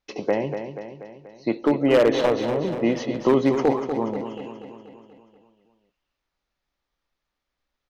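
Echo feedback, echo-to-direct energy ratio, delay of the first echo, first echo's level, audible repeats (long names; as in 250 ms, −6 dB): 56%, −7.0 dB, 241 ms, −8.5 dB, 6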